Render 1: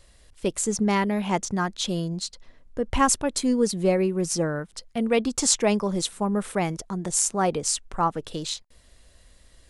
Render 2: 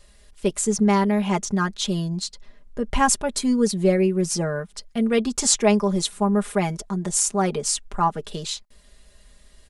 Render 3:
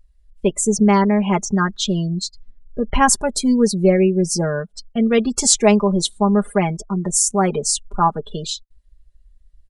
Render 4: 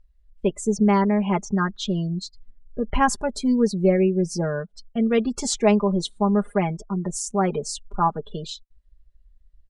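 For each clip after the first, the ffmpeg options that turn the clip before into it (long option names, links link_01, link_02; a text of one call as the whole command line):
ffmpeg -i in.wav -af "aecho=1:1:4.9:0.72" out.wav
ffmpeg -i in.wav -af "afftdn=noise_reduction=29:noise_floor=-34,volume=4.5dB" out.wav
ffmpeg -i in.wav -af "aemphasis=mode=reproduction:type=50fm,volume=-4.5dB" out.wav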